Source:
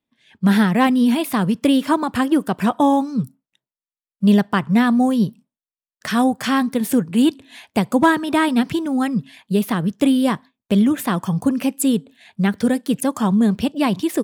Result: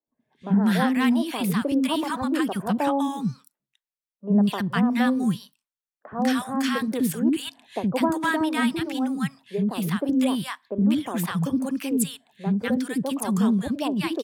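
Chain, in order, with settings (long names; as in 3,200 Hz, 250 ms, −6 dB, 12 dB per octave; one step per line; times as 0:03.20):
three-band delay without the direct sound mids, lows, highs 70/200 ms, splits 330/1,000 Hz
level −4 dB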